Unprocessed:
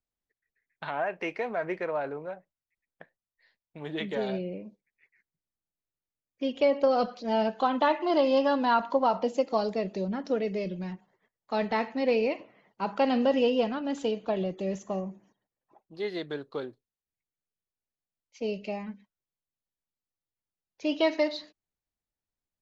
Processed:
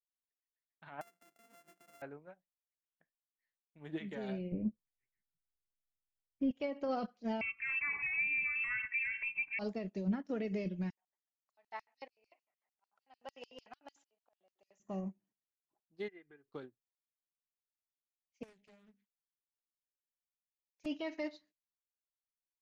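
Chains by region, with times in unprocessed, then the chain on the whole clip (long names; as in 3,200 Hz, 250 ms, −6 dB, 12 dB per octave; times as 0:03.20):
0:01.01–0:02.02: samples sorted by size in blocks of 64 samples + high-pass filter 280 Hz + downward compressor, threshold −37 dBFS
0:04.52–0:06.51: spectral tilt −4.5 dB per octave + double-tracking delay 18 ms −9.5 dB
0:07.41–0:09.59: parametric band 1,200 Hz +3 dB 0.89 octaves + hollow resonant body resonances 210/550/1,800 Hz, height 11 dB, ringing for 20 ms + voice inversion scrambler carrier 2,900 Hz
0:10.90–0:14.80: volume swells 678 ms + auto-filter high-pass square 6.7 Hz 730–5,100 Hz + dynamic equaliser 640 Hz, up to −4 dB, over −42 dBFS, Q 1.5
0:16.08–0:16.52: high shelf with overshoot 3,200 Hz −11 dB, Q 3 + comb filter 2.5 ms + downward compressor 2 to 1, threshold −45 dBFS
0:18.43–0:20.86: high-shelf EQ 2,400 Hz +10 dB + downward compressor 2 to 1, threshold −46 dBFS + highs frequency-modulated by the lows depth 0.78 ms
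whole clip: octave-band graphic EQ 500/1,000/4,000 Hz −7/−5/−9 dB; brickwall limiter −29.5 dBFS; expander for the loud parts 2.5 to 1, over −50 dBFS; level +4 dB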